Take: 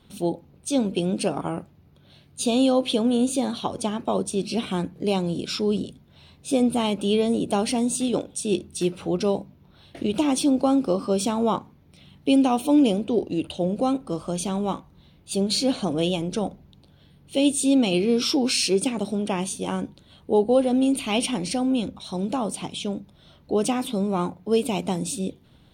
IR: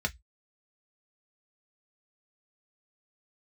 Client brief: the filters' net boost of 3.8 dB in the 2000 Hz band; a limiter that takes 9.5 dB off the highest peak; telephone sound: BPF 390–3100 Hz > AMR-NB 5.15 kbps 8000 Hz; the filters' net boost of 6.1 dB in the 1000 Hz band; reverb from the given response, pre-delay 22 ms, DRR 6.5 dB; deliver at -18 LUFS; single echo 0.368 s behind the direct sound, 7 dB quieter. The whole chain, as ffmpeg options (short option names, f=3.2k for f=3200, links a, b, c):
-filter_complex "[0:a]equalizer=f=1k:t=o:g=7.5,equalizer=f=2k:t=o:g=5.5,alimiter=limit=-15.5dB:level=0:latency=1,aecho=1:1:368:0.447,asplit=2[a][b];[1:a]atrim=start_sample=2205,adelay=22[c];[b][c]afir=irnorm=-1:irlink=0,volume=-12.5dB[d];[a][d]amix=inputs=2:normalize=0,highpass=390,lowpass=3.1k,volume=12dB" -ar 8000 -c:a libopencore_amrnb -b:a 5150